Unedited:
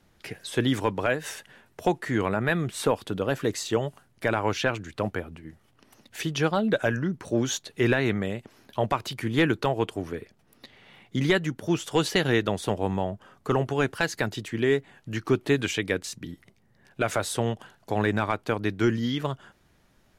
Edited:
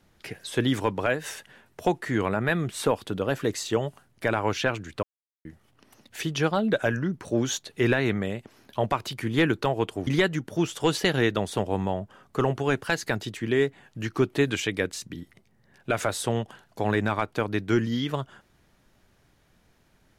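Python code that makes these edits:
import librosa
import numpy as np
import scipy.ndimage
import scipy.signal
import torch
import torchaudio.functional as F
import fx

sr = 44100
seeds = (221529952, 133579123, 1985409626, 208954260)

y = fx.edit(x, sr, fx.silence(start_s=5.03, length_s=0.42),
    fx.cut(start_s=10.07, length_s=1.11), tone=tone)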